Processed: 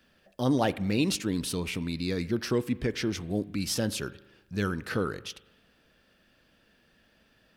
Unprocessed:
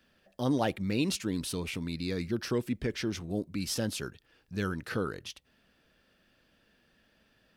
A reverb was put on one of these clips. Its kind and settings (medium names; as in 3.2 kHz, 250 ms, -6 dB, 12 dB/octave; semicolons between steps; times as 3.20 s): spring tank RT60 1.1 s, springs 39 ms, chirp 60 ms, DRR 17.5 dB; trim +3 dB